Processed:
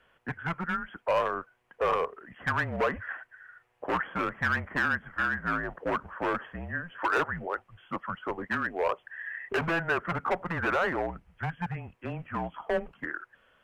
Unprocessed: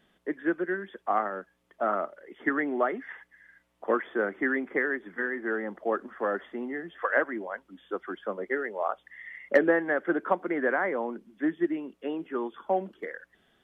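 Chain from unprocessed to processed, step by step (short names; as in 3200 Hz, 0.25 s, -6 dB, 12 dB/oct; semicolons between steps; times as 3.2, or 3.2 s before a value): hard clip -26 dBFS, distortion -7 dB; frequency shift -170 Hz; band shelf 1100 Hz +10 dB 2.9 oct; gain -4.5 dB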